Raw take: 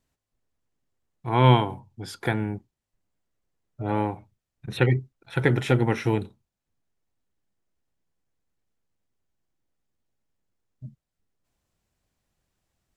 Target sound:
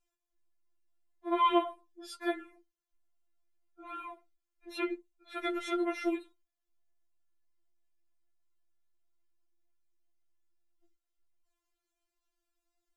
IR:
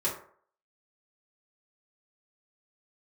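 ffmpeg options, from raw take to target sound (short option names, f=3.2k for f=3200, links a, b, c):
-filter_complex "[0:a]asettb=1/sr,asplit=3[a][b][c];[a]atrim=end=5.464[d];[b]atrim=start=5.46:end=6.14,asetpts=PTS-STARTPTS,afade=t=in:d=0.004:c=qsin,afade=t=out:st=0.676:d=0.004:c=qsin,aecho=1:1:7.3:0.47,atrim=end_sample=29988[e];[c]atrim=start=6.136[f];[d][e]acrossfade=d=0.004:c1=hsin:c2=qsin[g];[g][f]acrossfade=d=0.004:c1=qsin:c2=hsin,afftfilt=real='re*4*eq(mod(b,16),0)':imag='im*4*eq(mod(b,16),0)':win_size=2048:overlap=0.75,volume=-5dB"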